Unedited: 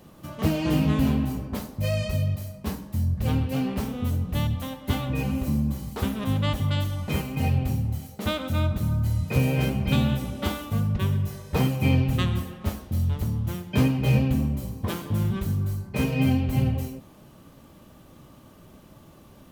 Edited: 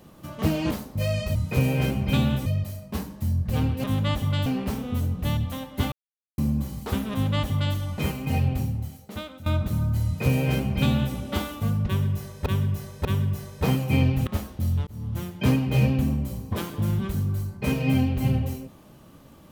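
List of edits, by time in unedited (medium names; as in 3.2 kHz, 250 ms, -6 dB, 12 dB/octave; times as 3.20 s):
0.71–1.54 s: delete
5.02–5.48 s: mute
6.22–6.84 s: copy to 3.56 s
7.62–8.56 s: fade out, to -16.5 dB
9.14–10.25 s: copy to 2.18 s
10.97–11.56 s: loop, 3 plays
12.19–12.59 s: delete
13.19–13.63 s: fade in equal-power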